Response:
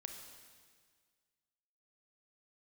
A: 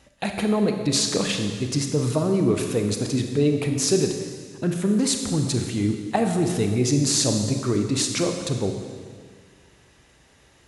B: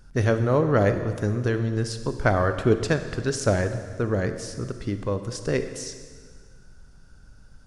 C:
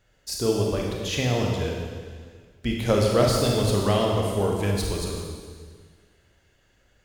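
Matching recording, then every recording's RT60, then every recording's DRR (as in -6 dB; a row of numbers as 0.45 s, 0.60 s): A; 1.7 s, 1.7 s, 1.7 s; 4.0 dB, 8.5 dB, -1.5 dB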